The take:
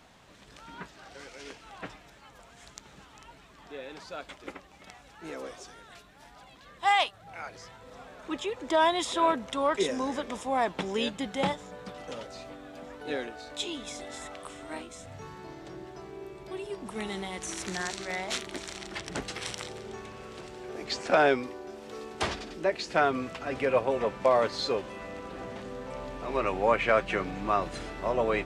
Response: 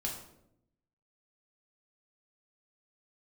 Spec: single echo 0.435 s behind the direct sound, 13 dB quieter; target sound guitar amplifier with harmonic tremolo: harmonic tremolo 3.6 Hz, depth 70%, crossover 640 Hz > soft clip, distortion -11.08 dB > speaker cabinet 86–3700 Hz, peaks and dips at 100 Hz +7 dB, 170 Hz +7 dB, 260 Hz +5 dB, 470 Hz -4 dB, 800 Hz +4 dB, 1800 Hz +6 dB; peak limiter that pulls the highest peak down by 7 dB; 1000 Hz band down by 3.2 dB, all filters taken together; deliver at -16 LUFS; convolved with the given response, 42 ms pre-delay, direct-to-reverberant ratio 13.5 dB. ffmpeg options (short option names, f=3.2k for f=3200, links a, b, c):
-filter_complex "[0:a]equalizer=f=1k:t=o:g=-7.5,alimiter=limit=-21dB:level=0:latency=1,aecho=1:1:435:0.224,asplit=2[a][b];[1:a]atrim=start_sample=2205,adelay=42[c];[b][c]afir=irnorm=-1:irlink=0,volume=-15dB[d];[a][d]amix=inputs=2:normalize=0,acrossover=split=640[e][f];[e]aeval=exprs='val(0)*(1-0.7/2+0.7/2*cos(2*PI*3.6*n/s))':c=same[g];[f]aeval=exprs='val(0)*(1-0.7/2-0.7/2*cos(2*PI*3.6*n/s))':c=same[h];[g][h]amix=inputs=2:normalize=0,asoftclip=threshold=-33dB,highpass=86,equalizer=f=100:t=q:w=4:g=7,equalizer=f=170:t=q:w=4:g=7,equalizer=f=260:t=q:w=4:g=5,equalizer=f=470:t=q:w=4:g=-4,equalizer=f=800:t=q:w=4:g=4,equalizer=f=1.8k:t=q:w=4:g=6,lowpass=f=3.7k:w=0.5412,lowpass=f=3.7k:w=1.3066,volume=24.5dB"